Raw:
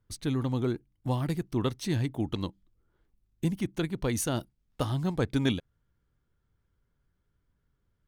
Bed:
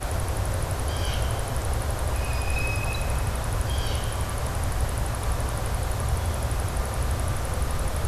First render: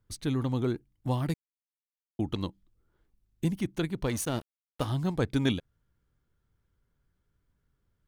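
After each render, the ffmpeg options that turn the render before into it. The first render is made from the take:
-filter_complex "[0:a]asettb=1/sr,asplit=3[a][b][c];[a]atrim=end=4.064[d];[b]atrim=start=4.06:end=4.88,asetpts=PTS-STARTPTS,afade=t=in:d=0.004:c=qsin,afade=t=out:st=0.816:d=0.004:c=qsin,aeval=exprs='sgn(val(0))*max(abs(val(0))-0.00841,0)':c=same[e];[c]atrim=start=4.876[f];[d][e]acrossfade=d=0.004:c1=hsin:c2=qsin[g];[g][f]acrossfade=d=0.004:c1=qsin:c2=hsin,asplit=3[h][i][j];[h]atrim=end=1.34,asetpts=PTS-STARTPTS,afade=t=out:st=1.336:d=0.004:c=hsin[k];[i]atrim=start=1.34:end=2.19,asetpts=PTS-STARTPTS,volume=0[l];[j]atrim=start=2.19,asetpts=PTS-STARTPTS,afade=t=in:d=0.004:c=hsin[m];[k][l][m]concat=n=3:v=0:a=1"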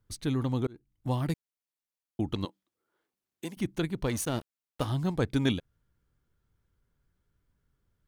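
-filter_complex "[0:a]asettb=1/sr,asplit=3[a][b][c];[a]atrim=end=2.454[d];[b]atrim=start=2.45:end=3.57,asetpts=PTS-STARTPTS,afade=t=in:d=0.004:c=qsin,afade=t=out:st=1.116:d=0.004:c=qsin,highpass=410[e];[c]atrim=start=3.566[f];[d][e]acrossfade=d=0.004:c1=hsin:c2=qsin[g];[g][f]acrossfade=d=0.004:c1=qsin:c2=hsin,asplit=2[h][i];[h]atrim=end=0.67,asetpts=PTS-STARTPTS,afade=t=out:st=0.666:d=0.004:c=hsin[j];[i]atrim=start=0.67,asetpts=PTS-STARTPTS,afade=t=in:d=0.59:c=qsin[k];[j][k]concat=n=2:v=0:a=1"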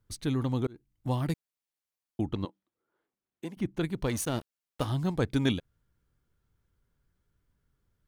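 -filter_complex "[0:a]asettb=1/sr,asplit=3[a][b][c];[a]atrim=end=2.264[d];[b]atrim=start=2.26:end=3.81,asetpts=PTS-STARTPTS,afade=t=in:d=0.004:c=qsin,afade=t=out:st=1.546:d=0.004:c=qsin,highshelf=f=3.2k:g=-11.5[e];[c]atrim=start=3.806[f];[d][e]acrossfade=d=0.004:c1=hsin:c2=qsin[g];[g][f]acrossfade=d=0.004:c1=qsin:c2=hsin"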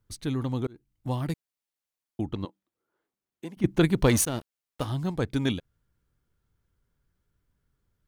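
-filter_complex "[0:a]asplit=3[a][b][c];[a]atrim=end=3.642[d];[b]atrim=start=3.638:end=4.252,asetpts=PTS-STARTPTS,volume=9.5dB[e];[c]atrim=start=4.248[f];[d][e]acrossfade=d=0.004:c1=hsin:c2=hsin[g];[g][f]acrossfade=d=0.004:c1=hsin:c2=hsin"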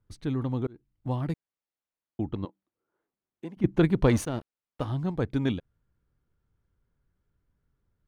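-af "lowpass=f=1.7k:p=1"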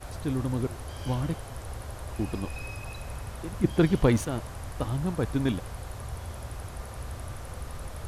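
-filter_complex "[1:a]volume=-11.5dB[a];[0:a][a]amix=inputs=2:normalize=0"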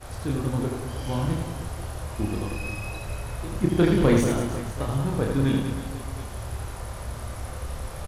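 -filter_complex "[0:a]asplit=2[a][b];[b]adelay=29,volume=-3dB[c];[a][c]amix=inputs=2:normalize=0,aecho=1:1:80|184|319.2|495|723.4:0.631|0.398|0.251|0.158|0.1"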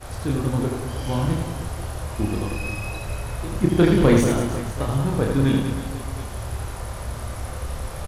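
-af "volume=3.5dB"

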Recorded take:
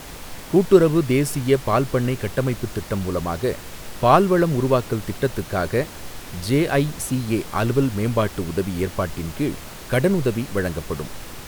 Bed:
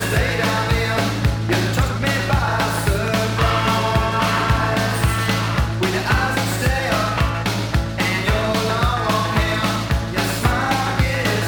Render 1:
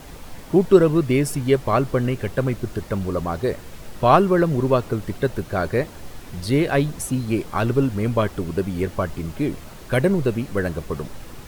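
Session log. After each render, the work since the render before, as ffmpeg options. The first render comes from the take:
-af "afftdn=nr=7:nf=-37"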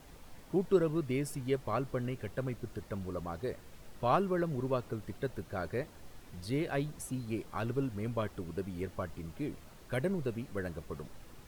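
-af "volume=-14.5dB"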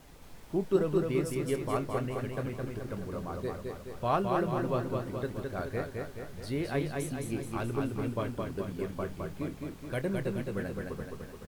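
-filter_complex "[0:a]asplit=2[a][b];[b]adelay=26,volume=-12.5dB[c];[a][c]amix=inputs=2:normalize=0,aecho=1:1:213|426|639|852|1065|1278|1491|1704:0.668|0.381|0.217|0.124|0.0706|0.0402|0.0229|0.0131"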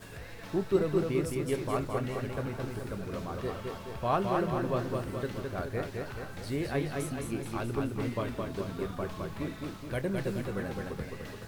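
-filter_complex "[1:a]volume=-27.5dB[a];[0:a][a]amix=inputs=2:normalize=0"

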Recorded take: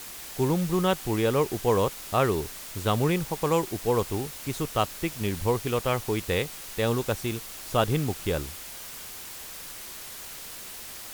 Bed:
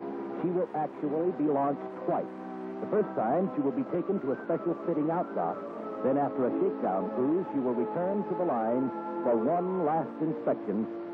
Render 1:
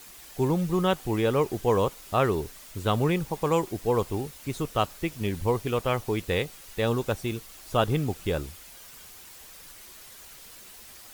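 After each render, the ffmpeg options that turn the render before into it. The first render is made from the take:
-af "afftdn=nr=8:nf=-41"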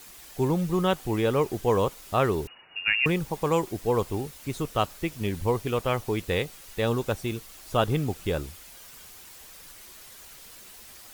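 -filter_complex "[0:a]asettb=1/sr,asplit=3[a][b][c];[a]atrim=end=2.474[d];[b]atrim=start=2.47:end=3.06,asetpts=PTS-STARTPTS,afade=t=in:d=0.004:c=qsin,afade=t=out:st=0.586:d=0.004:c=qsin,lowpass=f=2.5k:t=q:w=0.5098,lowpass=f=2.5k:t=q:w=0.6013,lowpass=f=2.5k:t=q:w=0.9,lowpass=f=2.5k:t=q:w=2.563,afreqshift=-2900[e];[c]atrim=start=3.056[f];[d][e]acrossfade=d=0.004:c1=hsin:c2=qsin[g];[g][f]acrossfade=d=0.004:c1=qsin:c2=hsin"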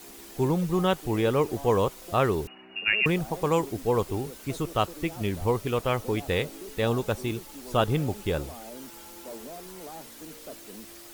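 -filter_complex "[1:a]volume=-15dB[a];[0:a][a]amix=inputs=2:normalize=0"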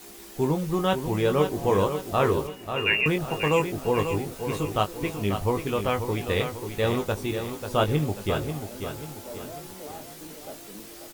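-filter_complex "[0:a]asplit=2[a][b];[b]adelay=20,volume=-7dB[c];[a][c]amix=inputs=2:normalize=0,aecho=1:1:540|1080|1620|2160|2700:0.398|0.171|0.0736|0.0317|0.0136"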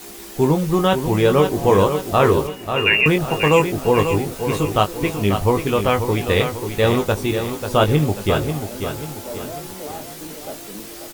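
-af "volume=8dB,alimiter=limit=-3dB:level=0:latency=1"

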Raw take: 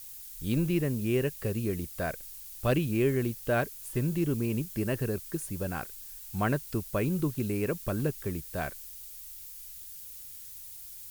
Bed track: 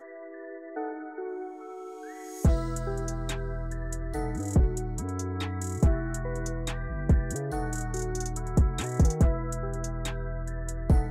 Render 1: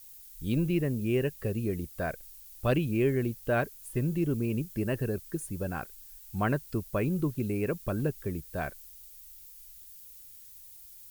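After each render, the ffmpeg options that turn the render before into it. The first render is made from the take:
-af "afftdn=nr=7:nf=-45"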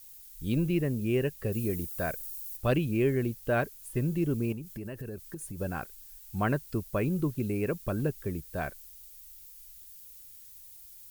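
-filter_complex "[0:a]asettb=1/sr,asplit=3[a][b][c];[a]atrim=end=1.524[d];[b]atrim=start=1.52:end=2.57,asetpts=PTS-STARTPTS,afade=t=in:d=0.004:c=qsin,afade=t=out:st=1.046:d=0.004:c=qsin,highshelf=f=6.5k:g=10.5[e];[c]atrim=start=2.566[f];[d][e]acrossfade=d=0.004:c1=hsin:c2=qsin[g];[g][f]acrossfade=d=0.004:c1=qsin:c2=hsin,asettb=1/sr,asplit=3[h][i][j];[h]atrim=end=4.524[k];[i]atrim=start=4.52:end=5.59,asetpts=PTS-STARTPTS,afade=t=in:d=0.004:c=qsin,afade=t=out:st=1.066:d=0.004:c=qsin,acompressor=threshold=-35dB:ratio=6:attack=3.2:release=140:knee=1:detection=peak[l];[j]atrim=start=5.586[m];[k][l]acrossfade=d=0.004:c1=hsin:c2=qsin[n];[n][m]acrossfade=d=0.004:c1=qsin:c2=hsin"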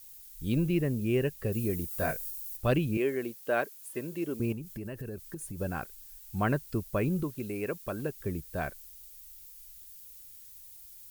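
-filter_complex "[0:a]asettb=1/sr,asplit=3[a][b][c];[a]atrim=end=1.894[d];[b]atrim=start=1.89:end=2.31,asetpts=PTS-STARTPTS,afade=t=in:d=0.004:c=qsin,afade=t=out:st=0.416:d=0.004:c=qsin,asplit=2[e][f];[f]adelay=20,volume=-3dB[g];[e][g]amix=inputs=2:normalize=0,atrim=end_sample=18522[h];[c]atrim=start=2.306[i];[d][h]acrossfade=d=0.004:c1=hsin:c2=qsin[j];[j][i]acrossfade=d=0.004:c1=qsin:c2=hsin,asettb=1/sr,asplit=3[k][l][m];[k]atrim=end=2.974[n];[l]atrim=start=2.97:end=4.4,asetpts=PTS-STARTPTS,afade=t=in:d=0.004:c=qsin,afade=t=out:st=1.426:d=0.004:c=qsin,highpass=340[o];[m]atrim=start=4.396[p];[n][o]acrossfade=d=0.004:c1=hsin:c2=qsin[q];[q][p]acrossfade=d=0.004:c1=qsin:c2=hsin,asettb=1/sr,asplit=3[r][s][t];[r]atrim=end=7.234[u];[s]atrim=start=7.23:end=8.21,asetpts=PTS-STARTPTS,afade=t=in:d=0.004:c=qsin,afade=t=out:st=0.976:d=0.004:c=qsin,lowshelf=f=240:g=-11[v];[t]atrim=start=8.206[w];[u][v]acrossfade=d=0.004:c1=hsin:c2=qsin[x];[x][w]acrossfade=d=0.004:c1=qsin:c2=hsin"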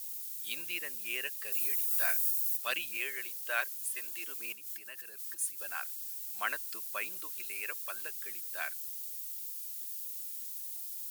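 -af "highpass=1.4k,highshelf=f=2k:g=9"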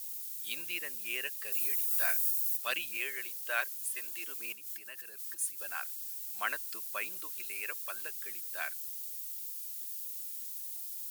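-af anull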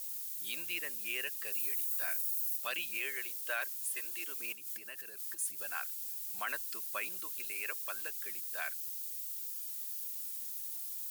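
-filter_complex "[0:a]acrossover=split=610|4700[a][b][c];[a]acompressor=mode=upward:threshold=-56dB:ratio=2.5[d];[d][b][c]amix=inputs=3:normalize=0,alimiter=level_in=1.5dB:limit=-24dB:level=0:latency=1:release=10,volume=-1.5dB"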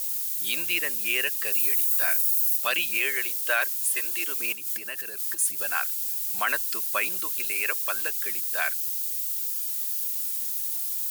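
-af "volume=12dB"

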